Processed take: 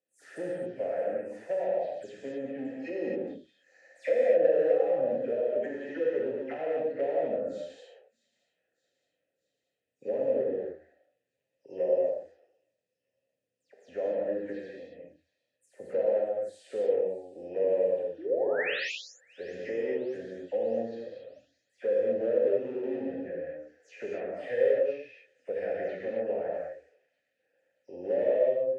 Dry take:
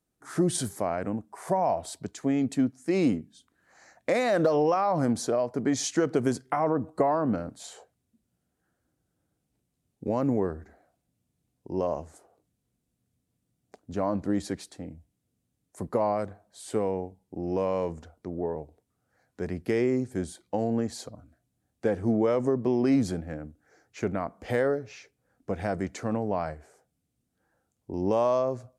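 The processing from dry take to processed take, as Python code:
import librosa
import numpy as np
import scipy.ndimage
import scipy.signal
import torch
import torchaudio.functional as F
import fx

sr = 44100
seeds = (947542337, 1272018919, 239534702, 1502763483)

p1 = fx.spec_delay(x, sr, highs='early', ms=131)
p2 = fx.env_lowpass_down(p1, sr, base_hz=770.0, full_db=-22.0)
p3 = fx.high_shelf(p2, sr, hz=4200.0, db=9.5)
p4 = np.clip(p3, -10.0 ** (-21.0 / 20.0), 10.0 ** (-21.0 / 20.0))
p5 = fx.spec_paint(p4, sr, seeds[0], shape='rise', start_s=18.18, length_s=0.75, low_hz=290.0, high_hz=7500.0, level_db=-28.0)
p6 = fx.vowel_filter(p5, sr, vowel='e')
p7 = p6 + fx.echo_wet_highpass(p6, sr, ms=624, feedback_pct=59, hz=4000.0, wet_db=-17.5, dry=0)
p8 = fx.rev_gated(p7, sr, seeds[1], gate_ms=290, shape='flat', drr_db=-4.0)
y = F.gain(torch.from_numpy(p8), 3.0).numpy()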